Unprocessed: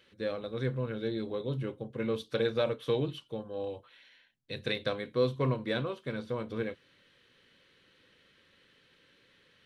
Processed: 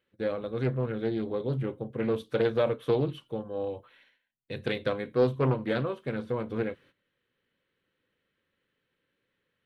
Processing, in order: gate -58 dBFS, range -16 dB; peaking EQ 5 kHz -10.5 dB 1.6 oct; loudspeaker Doppler distortion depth 0.41 ms; trim +4 dB

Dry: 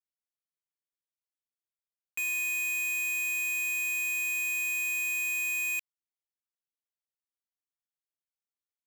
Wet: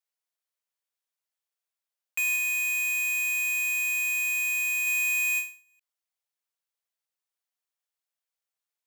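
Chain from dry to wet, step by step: 2.36–4.87 s: companding laws mixed up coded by A; inverse Chebyshev high-pass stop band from 230 Hz, stop band 40 dB; endings held to a fixed fall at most 150 dB/s; trim +5 dB

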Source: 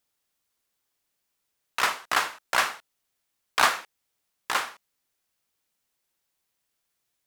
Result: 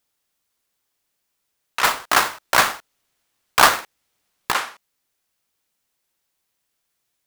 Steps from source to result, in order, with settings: 1.84–4.52 s: square wave that keeps the level; trim +3.5 dB

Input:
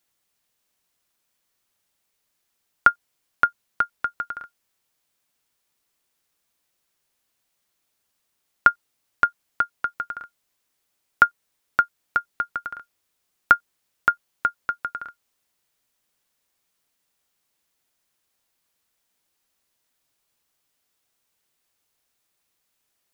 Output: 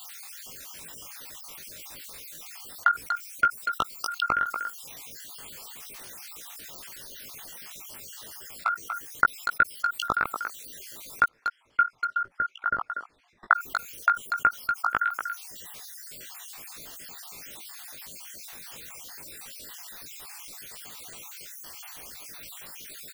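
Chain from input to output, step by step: random holes in the spectrogram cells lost 53%; reverb removal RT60 0.78 s; 11.26–13.52 s: low-pass 1.7 kHz 12 dB/octave; level held to a coarse grid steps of 22 dB; doubling 18 ms -4.5 dB; speakerphone echo 240 ms, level -23 dB; level flattener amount 70%; trim +3 dB

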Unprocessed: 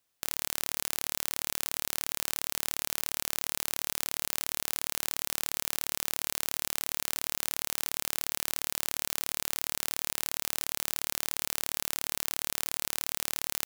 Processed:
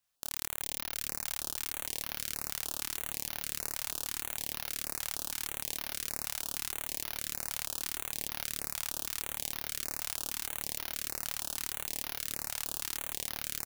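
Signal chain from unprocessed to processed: chorus voices 2, 0.89 Hz, delay 28 ms, depth 2.4 ms; frequency-shifting echo 382 ms, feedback 52%, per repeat -60 Hz, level -11.5 dB; step-sequenced notch 6.4 Hz 360–7900 Hz

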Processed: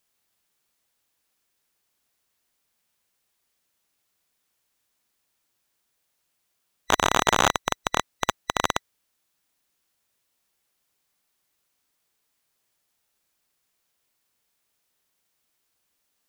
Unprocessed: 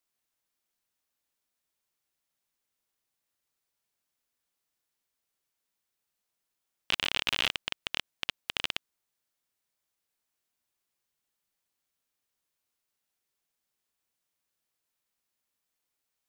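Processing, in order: split-band scrambler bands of 2 kHz; trim +9 dB

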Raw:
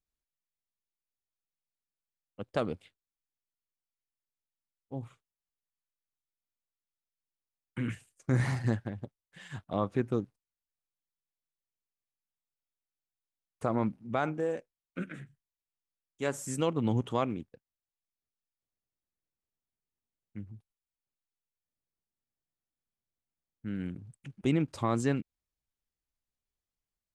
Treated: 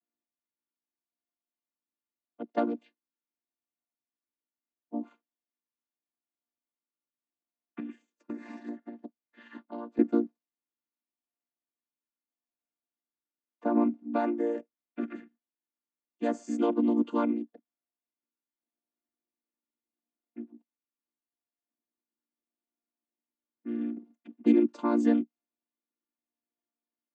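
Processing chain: vocoder on a held chord major triad, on A#3; level-controlled noise filter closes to 2.8 kHz, open at -32 dBFS; 7.79–9.99 s: compression 4:1, threshold -43 dBFS, peak gain reduction 16.5 dB; trim +4.5 dB

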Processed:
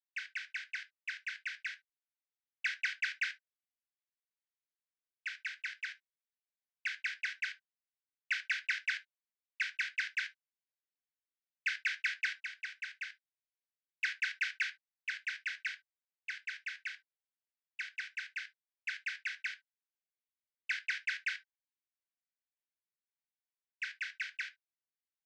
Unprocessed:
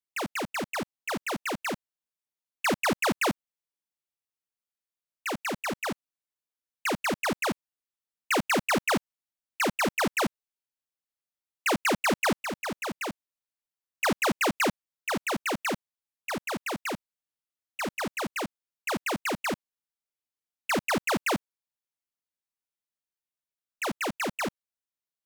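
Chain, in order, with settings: treble shelf 7 kHz -6.5 dB; in parallel at -8 dB: sample-and-hold 32×; on the sum: rippled Chebyshev high-pass 1.5 kHz, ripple 3 dB; distance through air 180 m; on a send at -6 dB: reverberation, pre-delay 3 ms; on the sum: resampled via 32 kHz; trim -1.5 dB

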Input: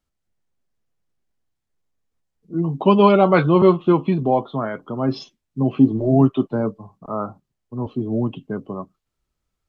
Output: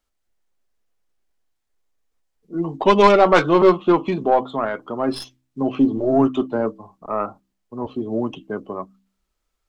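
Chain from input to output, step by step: tracing distortion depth 0.11 ms; peaking EQ 130 Hz -14 dB 1.5 oct; de-hum 64.53 Hz, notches 5; in parallel at -10 dB: saturation -13 dBFS, distortion -13 dB; on the sum: trim +1.5 dB

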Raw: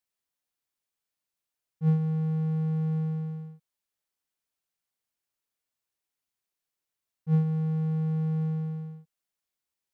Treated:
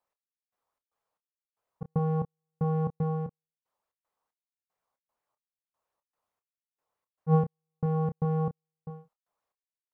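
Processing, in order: high-order bell 740 Hz +10.5 dB; trance gate "x...xx.x" 115 bpm -60 dB; treble shelf 2.1 kHz -10 dB; doubling 29 ms -10 dB; sweeping bell 4.5 Hz 960–2000 Hz +6 dB; trim +2 dB

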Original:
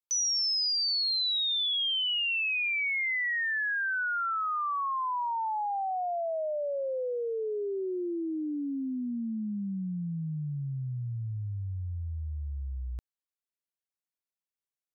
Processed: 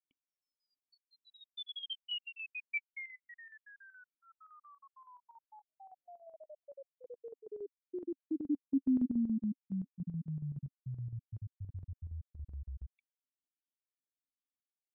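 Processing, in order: random holes in the spectrogram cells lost 51%; cascade formant filter i; square tremolo 7.1 Hz, depth 65%, duty 70%; trim +6.5 dB

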